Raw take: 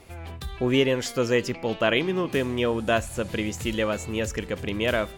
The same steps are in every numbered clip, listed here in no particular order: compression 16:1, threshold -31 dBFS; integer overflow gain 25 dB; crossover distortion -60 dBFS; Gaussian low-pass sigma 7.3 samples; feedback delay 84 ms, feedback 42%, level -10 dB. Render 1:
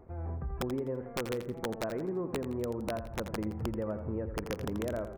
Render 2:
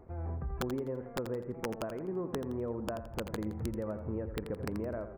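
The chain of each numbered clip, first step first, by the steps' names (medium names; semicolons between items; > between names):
crossover distortion > Gaussian low-pass > compression > integer overflow > feedback delay; compression > crossover distortion > Gaussian low-pass > integer overflow > feedback delay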